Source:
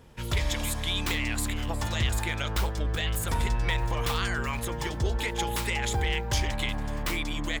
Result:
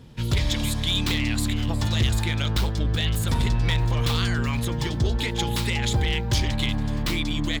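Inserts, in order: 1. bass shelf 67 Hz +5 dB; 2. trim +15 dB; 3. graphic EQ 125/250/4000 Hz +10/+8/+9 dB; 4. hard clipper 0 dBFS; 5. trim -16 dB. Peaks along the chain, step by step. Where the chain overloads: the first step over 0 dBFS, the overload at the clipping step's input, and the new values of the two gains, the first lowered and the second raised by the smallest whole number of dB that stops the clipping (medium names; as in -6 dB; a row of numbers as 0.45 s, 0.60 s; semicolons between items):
-14.5 dBFS, +0.5 dBFS, +9.0 dBFS, 0.0 dBFS, -16.0 dBFS; step 2, 9.0 dB; step 2 +6 dB, step 5 -7 dB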